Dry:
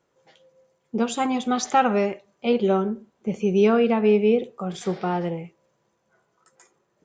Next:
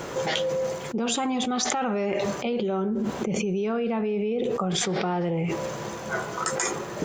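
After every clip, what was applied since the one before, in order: limiter -17.5 dBFS, peak gain reduction 10.5 dB; fast leveller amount 100%; gain -3.5 dB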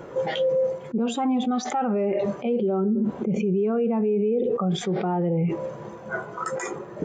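bell 6300 Hz -5 dB 1.3 oct; spectral expander 1.5:1; gain -3 dB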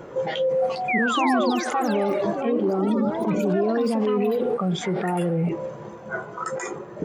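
painted sound fall, 0.88–1.5, 480–2500 Hz -25 dBFS; echoes that change speed 0.508 s, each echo +6 st, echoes 3, each echo -6 dB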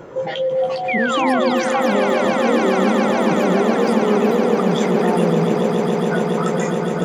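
swelling echo 0.14 s, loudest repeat 8, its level -10 dB; gain +2.5 dB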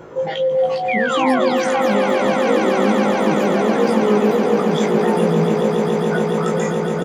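doubler 19 ms -4.5 dB; gain -1.5 dB

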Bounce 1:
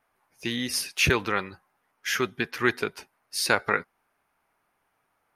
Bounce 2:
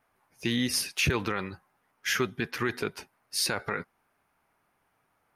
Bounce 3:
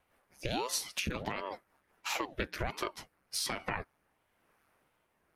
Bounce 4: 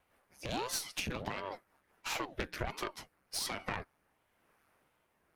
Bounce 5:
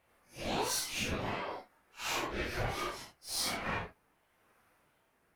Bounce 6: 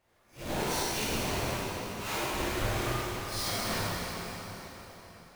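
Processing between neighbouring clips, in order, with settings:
bell 120 Hz +5 dB 2.6 oct; limiter -16.5 dBFS, peak gain reduction 11.5 dB
compressor 10:1, threshold -32 dBFS, peak gain reduction 11.5 dB; rotary speaker horn 5 Hz, later 1 Hz, at 2.03; ring modulator with a swept carrier 430 Hz, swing 85%, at 1.4 Hz; gain +5.5 dB
one diode to ground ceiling -34.5 dBFS
phase scrambler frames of 0.2 s; gain +3 dB
half-waves squared off; plate-style reverb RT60 4.3 s, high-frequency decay 0.85×, DRR -6.5 dB; gain -7 dB

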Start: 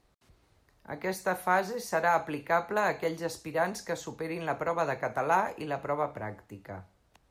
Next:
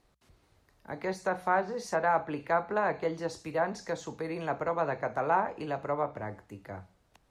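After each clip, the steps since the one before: treble ducked by the level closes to 2400 Hz, closed at -23.5 dBFS; notches 60/120/180 Hz; dynamic EQ 2500 Hz, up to -4 dB, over -45 dBFS, Q 0.93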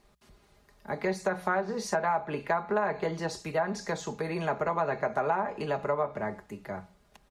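comb 4.9 ms, depth 57%; compressor 6:1, threshold -28 dBFS, peak gain reduction 9 dB; gain +4 dB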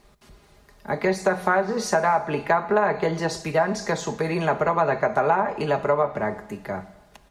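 plate-style reverb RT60 1.2 s, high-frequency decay 1×, DRR 14.5 dB; gain +7.5 dB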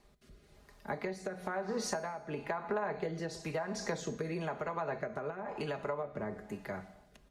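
compressor, threshold -25 dBFS, peak gain reduction 10 dB; rotary speaker horn 1 Hz; resonator 250 Hz, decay 0.97 s, mix 50%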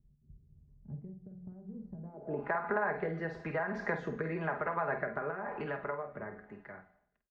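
ending faded out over 2.08 s; low-pass sweep 130 Hz -> 1700 Hz, 1.92–2.53; doubler 49 ms -9 dB

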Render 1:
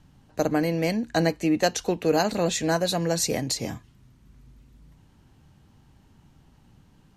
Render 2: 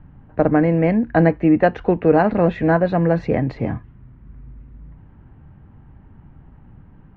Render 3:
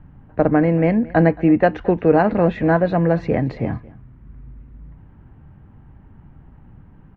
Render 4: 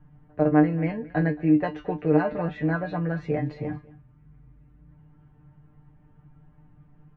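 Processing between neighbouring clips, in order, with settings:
LPF 2000 Hz 24 dB/oct; low shelf 140 Hz +7 dB; gain +7 dB
echo 0.224 s -21.5 dB
resonator 150 Hz, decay 0.16 s, harmonics all, mix 100%

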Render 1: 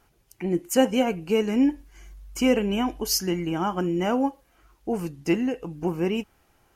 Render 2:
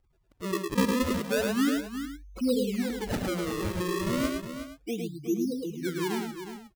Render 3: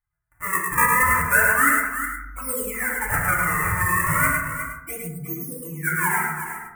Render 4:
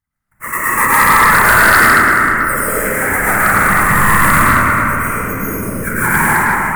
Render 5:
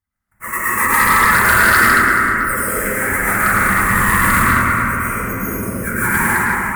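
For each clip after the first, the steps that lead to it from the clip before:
spectral contrast raised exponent 2.9; decimation with a swept rate 34×, swing 160% 0.33 Hz; on a send: tapped delay 57/107/363/466 ms -19.5/-4/-9.5/-16 dB; on the sum: gain -5.5 dB
gate with hold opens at -55 dBFS; EQ curve 160 Hz 0 dB, 230 Hz -19 dB, 460 Hz -13 dB, 730 Hz 0 dB, 1300 Hz +12 dB, 2000 Hz +14 dB, 3800 Hz -27 dB, 8700 Hz +15 dB; FDN reverb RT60 0.83 s, low-frequency decay 1.55×, high-frequency decay 0.3×, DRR -3 dB; gain +1.5 dB
whisperiser; digital reverb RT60 3.2 s, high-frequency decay 0.65×, pre-delay 85 ms, DRR -9 dB; sine folder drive 6 dB, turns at 4 dBFS; gain -7 dB
dynamic EQ 730 Hz, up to -6 dB, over -27 dBFS, Q 1.7; notch comb 150 Hz; gain -1 dB

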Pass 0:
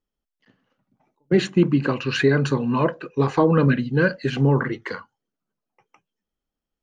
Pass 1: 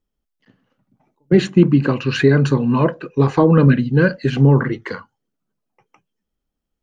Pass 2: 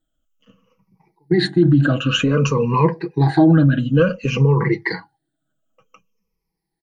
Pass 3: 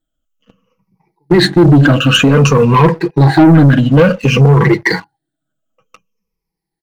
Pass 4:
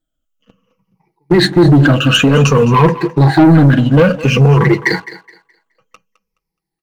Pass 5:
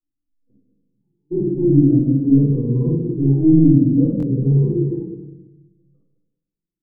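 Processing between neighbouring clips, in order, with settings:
low shelf 320 Hz +6.5 dB; gain +1.5 dB
moving spectral ripple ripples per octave 0.83, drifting -0.55 Hz, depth 21 dB; limiter -6.5 dBFS, peak gain reduction 10.5 dB; comb 6.2 ms, depth 54%; gain -2 dB
sample leveller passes 2; gain +3.5 dB
thinning echo 0.211 s, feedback 27%, high-pass 340 Hz, level -15.5 dB; gain -1 dB
ladder low-pass 350 Hz, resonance 55%; reverb RT60 0.90 s, pre-delay 8 ms, DRR -7.5 dB; stuck buffer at 4.18, samples 1024, times 1; gain -13.5 dB

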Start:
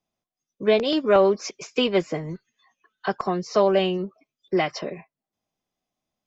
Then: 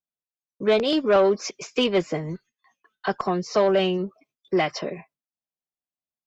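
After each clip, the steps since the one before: gate with hold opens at -53 dBFS; added harmonics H 5 -22 dB, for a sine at -7 dBFS; gain -1.5 dB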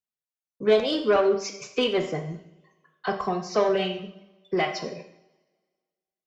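reverb removal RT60 0.99 s; two-slope reverb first 0.65 s, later 1.7 s, from -22 dB, DRR 3 dB; gain -3 dB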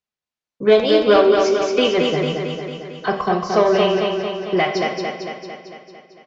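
LPF 5500 Hz 12 dB/oct; on a send: feedback echo 0.225 s, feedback 60%, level -4 dB; on the sum: gain +6.5 dB

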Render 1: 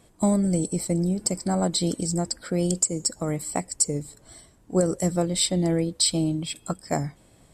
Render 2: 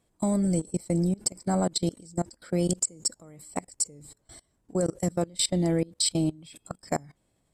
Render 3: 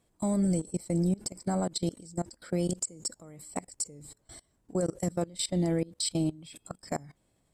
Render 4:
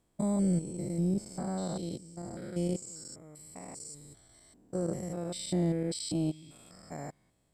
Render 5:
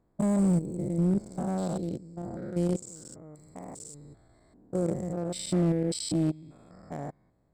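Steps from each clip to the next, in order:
level quantiser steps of 24 dB
limiter -20.5 dBFS, peak gain reduction 10 dB
stepped spectrum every 0.2 s
Wiener smoothing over 15 samples; hard clip -24.5 dBFS, distortion -23 dB; gain +4.5 dB

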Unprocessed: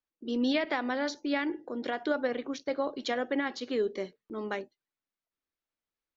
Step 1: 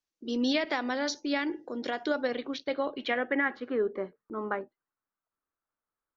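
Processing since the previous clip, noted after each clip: low-pass sweep 6000 Hz -> 1300 Hz, 2.07–3.84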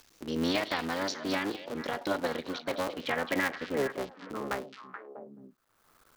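cycle switcher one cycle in 3, muted; delay with a stepping band-pass 0.215 s, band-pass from 3700 Hz, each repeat -1.4 oct, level -6 dB; upward compressor, threshold -37 dBFS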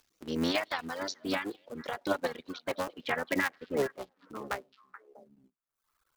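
in parallel at -11 dB: bit-crush 8-bit; on the sum: reverb removal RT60 1.7 s; upward expander 1.5:1, over -47 dBFS

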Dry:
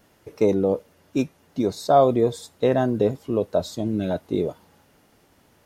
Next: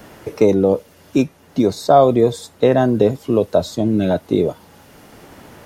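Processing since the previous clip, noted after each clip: three-band squash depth 40%; gain +6.5 dB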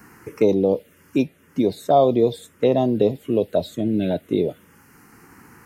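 envelope phaser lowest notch 590 Hz, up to 1600 Hz, full sweep at -9 dBFS; low shelf 88 Hz -11.5 dB; gain -2 dB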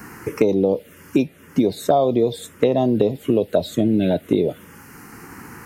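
compressor 6:1, threshold -23 dBFS, peak gain reduction 12 dB; gain +9 dB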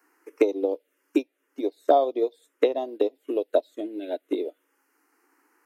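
elliptic high-pass 290 Hz, stop band 40 dB; upward expander 2.5:1, over -30 dBFS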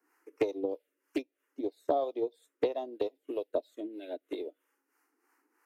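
harmonic tremolo 3.1 Hz, depth 70%, crossover 480 Hz; Doppler distortion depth 0.15 ms; gain -4.5 dB

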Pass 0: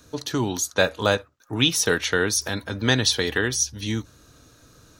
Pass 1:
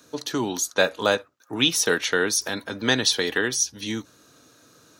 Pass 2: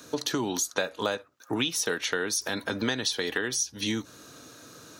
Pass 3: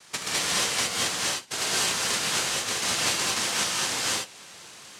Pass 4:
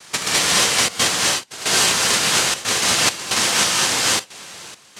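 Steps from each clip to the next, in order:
HPF 200 Hz 12 dB/oct
compressor 6:1, threshold -32 dBFS, peak gain reduction 17 dB; gain +6 dB
noise vocoder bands 1; non-linear reverb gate 0.25 s rising, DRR -5 dB; gain -3 dB
step gate "xxxxxxxx.xxxx.." 136 bpm -12 dB; gain +9 dB

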